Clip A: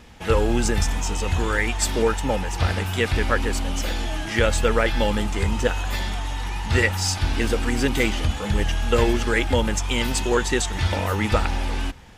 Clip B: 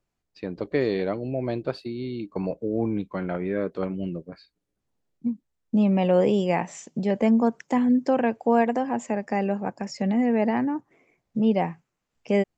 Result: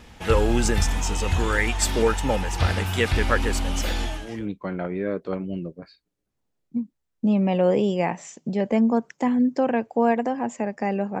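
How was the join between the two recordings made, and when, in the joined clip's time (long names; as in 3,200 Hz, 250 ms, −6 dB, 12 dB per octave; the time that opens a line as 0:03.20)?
clip A
0:04.28: continue with clip B from 0:02.78, crossfade 0.48 s quadratic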